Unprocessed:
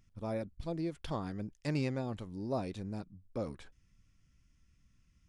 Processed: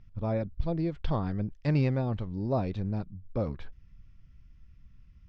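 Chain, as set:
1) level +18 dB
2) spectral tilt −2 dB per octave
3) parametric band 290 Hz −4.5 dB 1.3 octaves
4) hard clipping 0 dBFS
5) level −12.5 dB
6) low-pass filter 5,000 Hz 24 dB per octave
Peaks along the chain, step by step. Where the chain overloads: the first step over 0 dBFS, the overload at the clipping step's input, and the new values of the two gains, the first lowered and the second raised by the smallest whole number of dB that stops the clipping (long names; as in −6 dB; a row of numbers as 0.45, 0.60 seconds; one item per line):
−3.0, −0.5, −3.0, −3.0, −15.5, −16.0 dBFS
no step passes full scale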